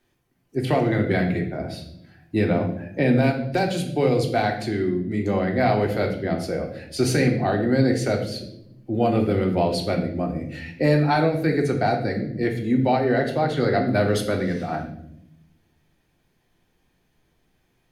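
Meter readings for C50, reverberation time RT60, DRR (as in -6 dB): 8.0 dB, 0.75 s, 1.5 dB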